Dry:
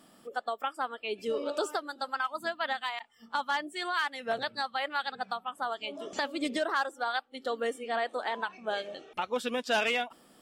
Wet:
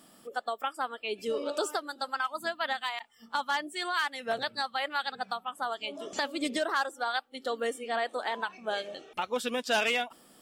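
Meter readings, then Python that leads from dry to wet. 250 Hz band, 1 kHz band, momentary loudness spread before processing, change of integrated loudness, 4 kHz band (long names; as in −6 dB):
0.0 dB, 0.0 dB, 7 LU, +0.5 dB, +2.0 dB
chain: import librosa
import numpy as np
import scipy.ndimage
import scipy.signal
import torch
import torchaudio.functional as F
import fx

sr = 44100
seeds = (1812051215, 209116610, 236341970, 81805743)

y = fx.high_shelf(x, sr, hz=5300.0, db=6.5)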